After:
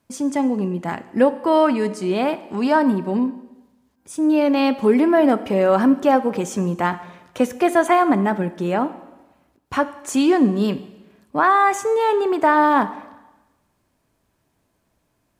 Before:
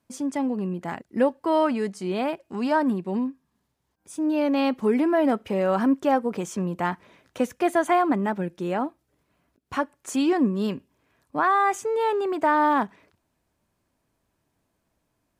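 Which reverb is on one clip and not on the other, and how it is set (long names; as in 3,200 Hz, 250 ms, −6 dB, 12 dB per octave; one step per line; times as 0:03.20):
dense smooth reverb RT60 1.1 s, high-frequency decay 1×, DRR 13 dB
level +5.5 dB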